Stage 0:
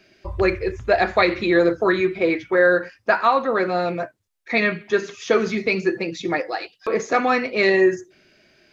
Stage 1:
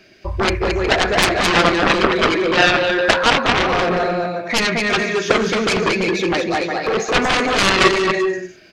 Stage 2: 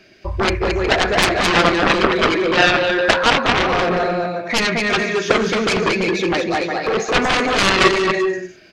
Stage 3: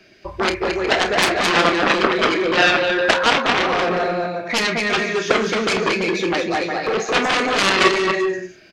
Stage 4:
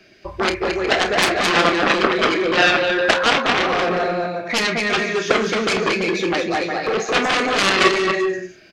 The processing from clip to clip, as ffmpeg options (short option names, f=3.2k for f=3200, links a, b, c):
-af "aecho=1:1:220|363|456|516.4|555.6:0.631|0.398|0.251|0.158|0.1,aeval=exprs='0.794*(cos(1*acos(clip(val(0)/0.794,-1,1)))-cos(1*PI/2))+0.355*(cos(7*acos(clip(val(0)/0.794,-1,1)))-cos(7*PI/2))':c=same"
-af "highshelf=f=8.9k:g=-3.5"
-filter_complex "[0:a]acrossover=split=170|810[a][b][c];[a]acompressor=threshold=-38dB:ratio=6[d];[c]aecho=1:1:30|48:0.316|0.141[e];[d][b][e]amix=inputs=3:normalize=0,volume=-1.5dB"
-af "bandreject=f=940:w=21"